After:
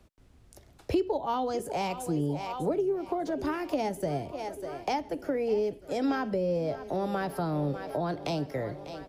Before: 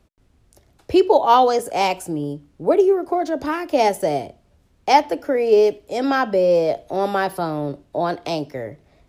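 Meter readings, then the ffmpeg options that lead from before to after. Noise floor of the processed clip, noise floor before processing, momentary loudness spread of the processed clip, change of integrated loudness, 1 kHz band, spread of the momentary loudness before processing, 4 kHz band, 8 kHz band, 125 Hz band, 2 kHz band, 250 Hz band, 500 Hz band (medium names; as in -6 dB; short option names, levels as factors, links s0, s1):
-58 dBFS, -59 dBFS, 5 LU, -12.0 dB, -14.0 dB, 12 LU, -12.5 dB, -10.0 dB, -1.5 dB, -12.5 dB, -7.0 dB, -12.0 dB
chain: -filter_complex "[0:a]aecho=1:1:597|1194|1791|2388|2985:0.119|0.0666|0.0373|0.0209|0.0117,acrossover=split=210[s0][s1];[s1]acompressor=threshold=0.0316:ratio=6[s2];[s0][s2]amix=inputs=2:normalize=0"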